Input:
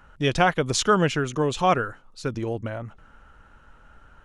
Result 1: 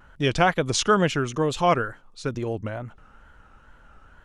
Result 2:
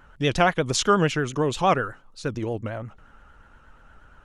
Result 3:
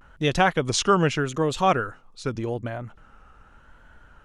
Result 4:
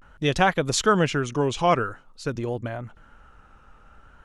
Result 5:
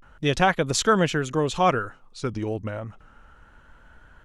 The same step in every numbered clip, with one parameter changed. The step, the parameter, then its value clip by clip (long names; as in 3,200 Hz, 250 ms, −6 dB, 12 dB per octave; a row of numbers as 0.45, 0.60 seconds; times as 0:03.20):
pitch vibrato, speed: 2.2, 8.5, 0.84, 0.48, 0.31 Hertz